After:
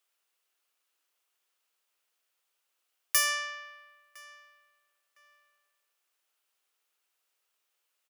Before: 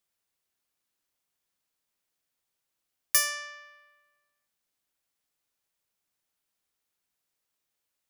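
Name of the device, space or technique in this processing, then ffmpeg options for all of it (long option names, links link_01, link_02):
laptop speaker: -filter_complex "[0:a]highpass=frequency=360:width=0.5412,highpass=frequency=360:width=1.3066,equalizer=frequency=1300:width_type=o:width=0.47:gain=4.5,equalizer=frequency=2800:width_type=o:width=0.5:gain=5,alimiter=limit=-15.5dB:level=0:latency=1:release=163,asplit=2[link_01][link_02];[link_02]adelay=1009,lowpass=frequency=2700:poles=1,volume=-20dB,asplit=2[link_03][link_04];[link_04]adelay=1009,lowpass=frequency=2700:poles=1,volume=0.29[link_05];[link_01][link_03][link_05]amix=inputs=3:normalize=0,volume=2.5dB"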